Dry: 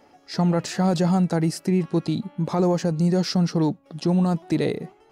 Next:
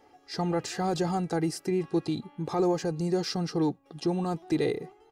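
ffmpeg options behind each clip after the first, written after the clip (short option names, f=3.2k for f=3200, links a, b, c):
-af "aecho=1:1:2.5:0.55,volume=-5.5dB"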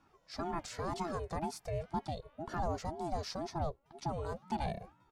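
-af "aeval=exprs='val(0)*sin(2*PI*400*n/s+400*0.4/2*sin(2*PI*2*n/s))':c=same,volume=-6.5dB"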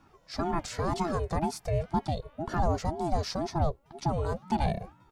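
-af "lowshelf=f=240:g=4.5,volume=6.5dB"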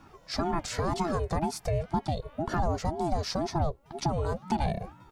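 -af "acompressor=threshold=-36dB:ratio=2,volume=6.5dB"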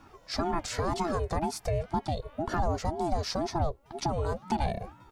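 -af "equalizer=f=160:t=o:w=0.47:g=-7"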